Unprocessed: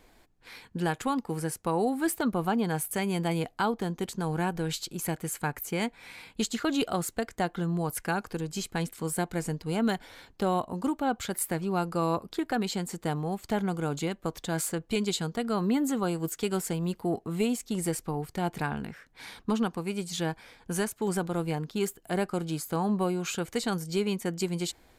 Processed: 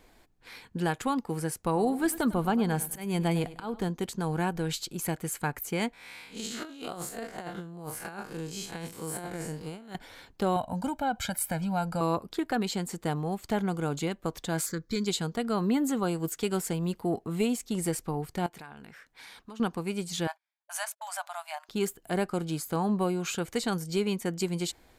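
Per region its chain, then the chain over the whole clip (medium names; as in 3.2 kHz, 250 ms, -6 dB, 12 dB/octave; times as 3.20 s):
1.62–3.89 s: bass shelf 84 Hz +9.5 dB + slow attack 193 ms + feedback delay 100 ms, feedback 36%, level -16.5 dB
5.93–9.95 s: spectral blur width 102 ms + bass shelf 250 Hz -7 dB + compressor with a negative ratio -37 dBFS, ratio -0.5
10.56–12.01 s: comb 1.3 ms, depth 92% + compression 2:1, threshold -27 dBFS
14.66–15.06 s: peaking EQ 6.6 kHz +6.5 dB 1.4 oct + static phaser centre 2.8 kHz, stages 6
18.46–19.60 s: bass shelf 420 Hz -9 dB + compression 3:1, threshold -45 dBFS
20.27–21.69 s: gate -45 dBFS, range -40 dB + brick-wall FIR high-pass 580 Hz
whole clip: none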